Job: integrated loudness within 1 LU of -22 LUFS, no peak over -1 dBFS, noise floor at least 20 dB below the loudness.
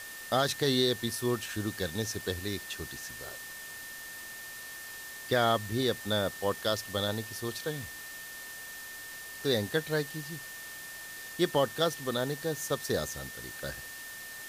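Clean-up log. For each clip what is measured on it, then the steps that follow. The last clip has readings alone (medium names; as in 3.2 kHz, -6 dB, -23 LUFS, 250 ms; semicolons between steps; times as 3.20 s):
steady tone 1.8 kHz; tone level -44 dBFS; noise floor -44 dBFS; noise floor target -53 dBFS; loudness -33.0 LUFS; peak level -14.0 dBFS; loudness target -22.0 LUFS
-> band-stop 1.8 kHz, Q 30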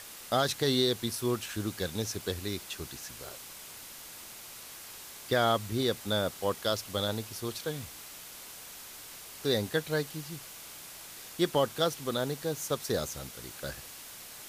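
steady tone not found; noise floor -47 dBFS; noise floor target -52 dBFS
-> noise print and reduce 6 dB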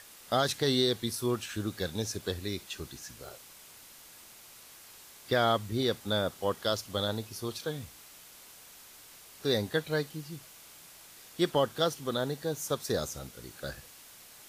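noise floor -53 dBFS; loudness -32.0 LUFS; peak level -14.5 dBFS; loudness target -22.0 LUFS
-> trim +10 dB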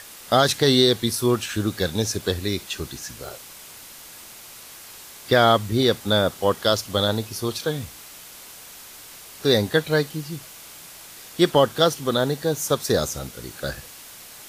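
loudness -22.0 LUFS; peak level -4.5 dBFS; noise floor -43 dBFS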